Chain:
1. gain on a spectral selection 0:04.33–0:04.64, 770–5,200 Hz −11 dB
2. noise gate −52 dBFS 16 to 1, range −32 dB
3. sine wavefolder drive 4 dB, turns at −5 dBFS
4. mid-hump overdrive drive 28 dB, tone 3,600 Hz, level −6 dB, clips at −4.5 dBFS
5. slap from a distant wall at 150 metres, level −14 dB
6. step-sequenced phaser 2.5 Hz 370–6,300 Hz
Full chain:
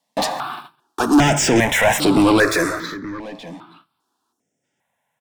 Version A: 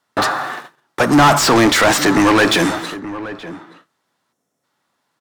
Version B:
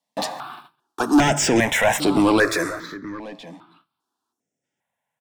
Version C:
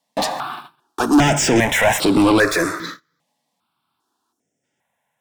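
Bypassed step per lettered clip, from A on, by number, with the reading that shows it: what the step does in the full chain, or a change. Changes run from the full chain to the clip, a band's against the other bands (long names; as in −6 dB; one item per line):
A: 6, 1 kHz band +3.5 dB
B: 3, distortion level −13 dB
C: 5, change in momentary loudness spread −3 LU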